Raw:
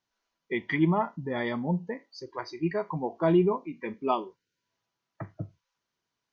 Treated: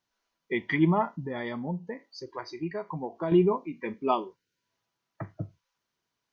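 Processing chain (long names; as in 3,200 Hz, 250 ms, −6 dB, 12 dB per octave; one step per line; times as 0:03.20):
0:01.21–0:03.32: downward compressor 2 to 1, threshold −35 dBFS, peak gain reduction 8.5 dB
level +1 dB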